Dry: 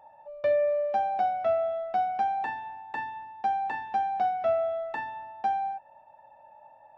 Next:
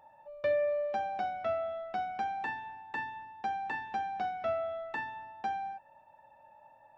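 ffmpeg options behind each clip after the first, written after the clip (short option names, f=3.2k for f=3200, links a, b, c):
-af "equalizer=f=720:t=o:w=0.69:g=-8.5"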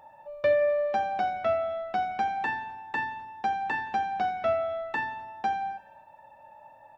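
-af "aecho=1:1:86|172|258|344|430:0.126|0.0743|0.0438|0.0259|0.0153,volume=6.5dB"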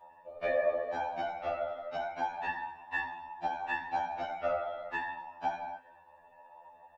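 -filter_complex "[0:a]afftfilt=real='hypot(re,im)*cos(2*PI*random(0))':imag='hypot(re,im)*sin(2*PI*random(1))':win_size=512:overlap=0.75,asplit=2[a][b];[b]adelay=15,volume=-7.5dB[c];[a][c]amix=inputs=2:normalize=0,afftfilt=real='re*2*eq(mod(b,4),0)':imag='im*2*eq(mod(b,4),0)':win_size=2048:overlap=0.75,volume=2dB"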